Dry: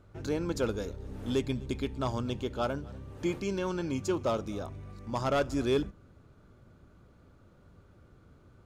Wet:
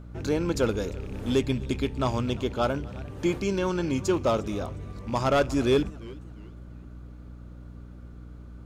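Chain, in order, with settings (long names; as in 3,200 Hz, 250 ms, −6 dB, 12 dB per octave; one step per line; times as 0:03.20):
loose part that buzzes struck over −37 dBFS, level −42 dBFS
mains hum 60 Hz, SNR 15 dB
feedback echo with a swinging delay time 352 ms, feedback 33%, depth 175 cents, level −21.5 dB
level +5.5 dB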